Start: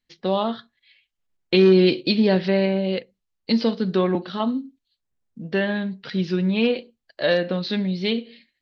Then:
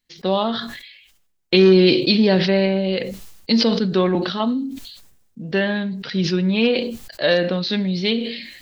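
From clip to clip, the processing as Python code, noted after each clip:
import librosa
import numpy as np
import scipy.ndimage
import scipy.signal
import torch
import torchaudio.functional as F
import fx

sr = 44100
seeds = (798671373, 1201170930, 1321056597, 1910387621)

y = fx.high_shelf(x, sr, hz=4800.0, db=8.0)
y = fx.sustainer(y, sr, db_per_s=55.0)
y = F.gain(torch.from_numpy(y), 2.0).numpy()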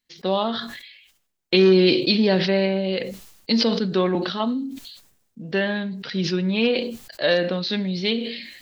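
y = fx.low_shelf(x, sr, hz=100.0, db=-8.5)
y = F.gain(torch.from_numpy(y), -2.0).numpy()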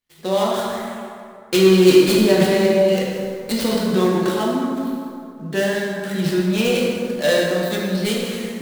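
y = fx.dead_time(x, sr, dead_ms=0.1)
y = fx.rev_plate(y, sr, seeds[0], rt60_s=2.5, hf_ratio=0.5, predelay_ms=0, drr_db=-4.0)
y = F.gain(torch.from_numpy(y), -1.5).numpy()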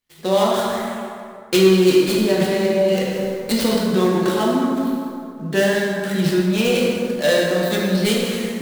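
y = fx.rider(x, sr, range_db=3, speed_s=0.5)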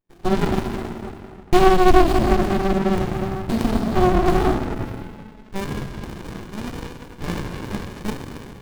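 y = fx.filter_sweep_highpass(x, sr, from_hz=320.0, to_hz=1200.0, start_s=4.25, end_s=5.75, q=4.9)
y = fx.running_max(y, sr, window=65)
y = F.gain(torch.from_numpy(y), -2.0).numpy()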